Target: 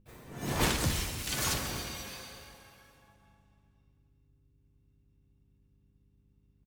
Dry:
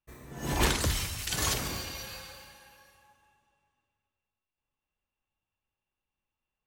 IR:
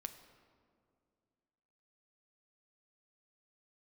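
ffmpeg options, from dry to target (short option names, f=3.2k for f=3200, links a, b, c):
-filter_complex "[0:a]aeval=exprs='val(0)+0.000794*(sin(2*PI*50*n/s)+sin(2*PI*2*50*n/s)/2+sin(2*PI*3*50*n/s)/3+sin(2*PI*4*50*n/s)/4+sin(2*PI*5*50*n/s)/5)':c=same[a];[1:a]atrim=start_sample=2205[b];[a][b]afir=irnorm=-1:irlink=0,asplit=4[c][d][e][f];[d]asetrate=35002,aresample=44100,atempo=1.25992,volume=-8dB[g];[e]asetrate=58866,aresample=44100,atempo=0.749154,volume=-6dB[h];[f]asetrate=88200,aresample=44100,atempo=0.5,volume=-9dB[i];[c][g][h][i]amix=inputs=4:normalize=0"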